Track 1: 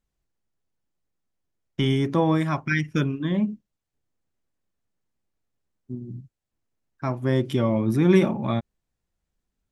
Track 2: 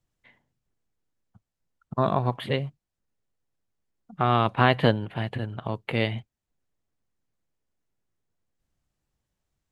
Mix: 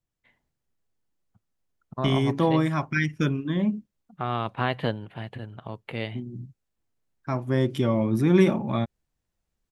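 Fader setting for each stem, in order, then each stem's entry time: −1.0, −6.5 decibels; 0.25, 0.00 seconds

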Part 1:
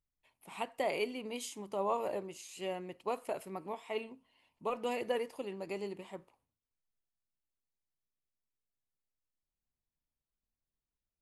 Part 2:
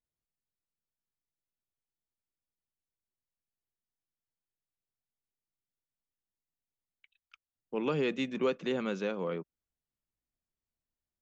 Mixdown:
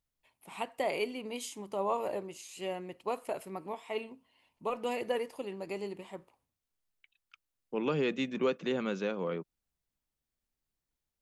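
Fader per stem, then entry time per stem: +1.5, 0.0 decibels; 0.00, 0.00 seconds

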